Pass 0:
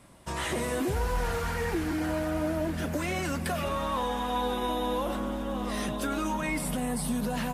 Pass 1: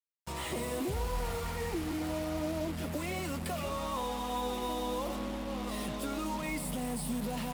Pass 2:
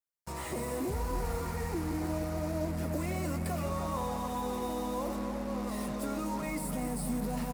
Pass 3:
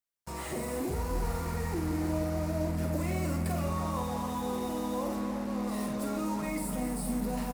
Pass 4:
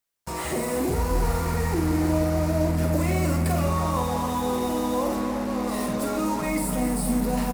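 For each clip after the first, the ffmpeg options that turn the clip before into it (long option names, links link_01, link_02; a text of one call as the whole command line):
ffmpeg -i in.wav -af "equalizer=frequency=1600:width_type=o:width=0.27:gain=-11.5,bandreject=frequency=6100:width=6.1,acrusher=bits=5:mix=0:aa=0.5,volume=-5dB" out.wav
ffmpeg -i in.wav -filter_complex "[0:a]equalizer=frequency=3200:width_type=o:width=0.7:gain=-10,asplit=2[link_01][link_02];[link_02]adelay=303,lowpass=frequency=2000:poles=1,volume=-7.5dB,asplit=2[link_03][link_04];[link_04]adelay=303,lowpass=frequency=2000:poles=1,volume=0.55,asplit=2[link_05][link_06];[link_06]adelay=303,lowpass=frequency=2000:poles=1,volume=0.55,asplit=2[link_07][link_08];[link_08]adelay=303,lowpass=frequency=2000:poles=1,volume=0.55,asplit=2[link_09][link_10];[link_10]adelay=303,lowpass=frequency=2000:poles=1,volume=0.55,asplit=2[link_11][link_12];[link_12]adelay=303,lowpass=frequency=2000:poles=1,volume=0.55,asplit=2[link_13][link_14];[link_14]adelay=303,lowpass=frequency=2000:poles=1,volume=0.55[link_15];[link_01][link_03][link_05][link_07][link_09][link_11][link_13][link_15]amix=inputs=8:normalize=0" out.wav
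ffmpeg -i in.wav -filter_complex "[0:a]asplit=2[link_01][link_02];[link_02]adelay=48,volume=-6dB[link_03];[link_01][link_03]amix=inputs=2:normalize=0" out.wav
ffmpeg -i in.wav -af "bandreject=frequency=68.89:width_type=h:width=4,bandreject=frequency=137.78:width_type=h:width=4,bandreject=frequency=206.67:width_type=h:width=4,bandreject=frequency=275.56:width_type=h:width=4,bandreject=frequency=344.45:width_type=h:width=4,volume=8.5dB" out.wav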